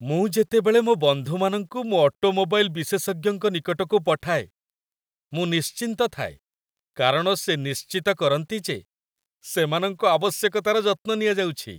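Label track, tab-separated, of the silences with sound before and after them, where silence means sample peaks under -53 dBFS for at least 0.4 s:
4.490000	5.320000	silence
6.370000	6.960000	silence
8.830000	9.430000	silence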